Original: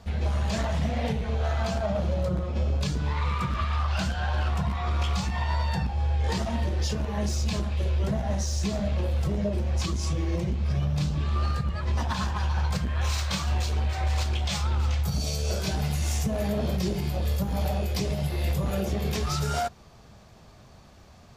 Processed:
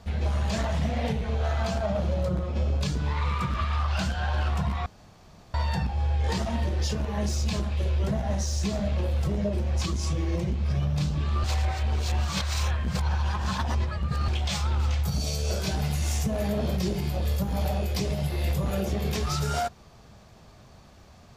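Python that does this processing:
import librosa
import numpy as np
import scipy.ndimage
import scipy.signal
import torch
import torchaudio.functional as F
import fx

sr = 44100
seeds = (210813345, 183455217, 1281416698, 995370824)

y = fx.edit(x, sr, fx.room_tone_fill(start_s=4.86, length_s=0.68),
    fx.reverse_span(start_s=11.44, length_s=2.84), tone=tone)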